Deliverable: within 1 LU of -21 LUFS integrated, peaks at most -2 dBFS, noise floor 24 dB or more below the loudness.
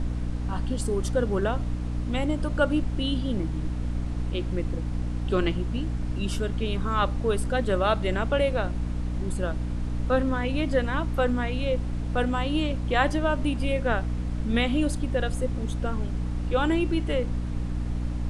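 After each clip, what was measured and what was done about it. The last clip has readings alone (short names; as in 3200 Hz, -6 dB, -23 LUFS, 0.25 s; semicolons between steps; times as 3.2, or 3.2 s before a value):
hum 60 Hz; harmonics up to 300 Hz; hum level -27 dBFS; noise floor -30 dBFS; noise floor target -52 dBFS; loudness -27.5 LUFS; peak -8.0 dBFS; loudness target -21.0 LUFS
-> notches 60/120/180/240/300 Hz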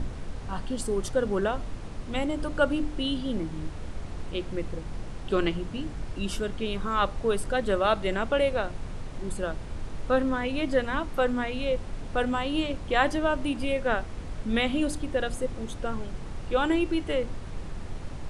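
hum none; noise floor -38 dBFS; noise floor target -53 dBFS
-> noise print and reduce 15 dB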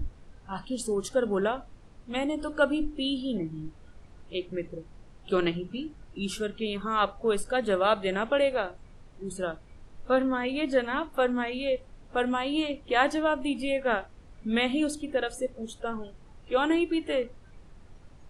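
noise floor -52 dBFS; noise floor target -53 dBFS
-> noise print and reduce 6 dB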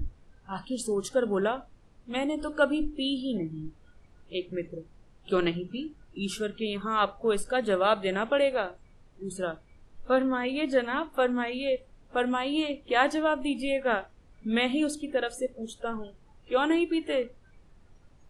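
noise floor -57 dBFS; loudness -29.0 LUFS; peak -8.5 dBFS; loudness target -21.0 LUFS
-> gain +8 dB; limiter -2 dBFS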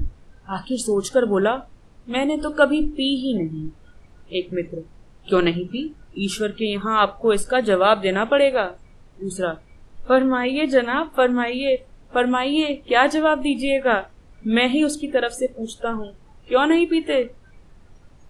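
loudness -21.0 LUFS; peak -2.0 dBFS; noise floor -49 dBFS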